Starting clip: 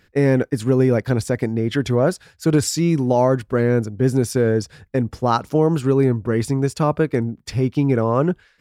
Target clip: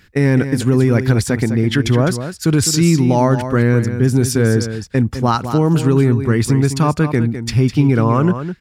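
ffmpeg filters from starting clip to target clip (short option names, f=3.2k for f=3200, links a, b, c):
-filter_complex "[0:a]equalizer=f=550:t=o:w=1.3:g=-9,alimiter=limit=-13.5dB:level=0:latency=1:release=70,asplit=2[a][b];[b]aecho=0:1:206:0.316[c];[a][c]amix=inputs=2:normalize=0,volume=8dB"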